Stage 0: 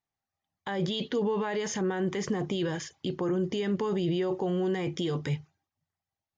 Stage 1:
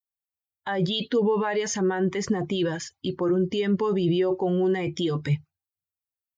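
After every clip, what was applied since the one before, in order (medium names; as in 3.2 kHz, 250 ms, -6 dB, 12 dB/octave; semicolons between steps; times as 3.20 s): expander on every frequency bin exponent 1.5; trim +7.5 dB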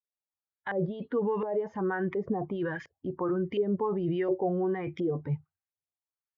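LFO low-pass saw up 1.4 Hz 480–2200 Hz; trim -7 dB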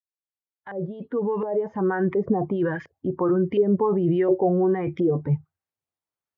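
fade-in on the opening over 2.10 s; high-pass 63 Hz; treble shelf 2.1 kHz -12 dB; trim +8.5 dB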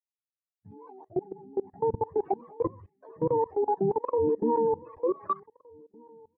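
spectrum inverted on a logarithmic axis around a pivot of 410 Hz; level held to a coarse grid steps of 24 dB; echo from a far wall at 260 m, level -26 dB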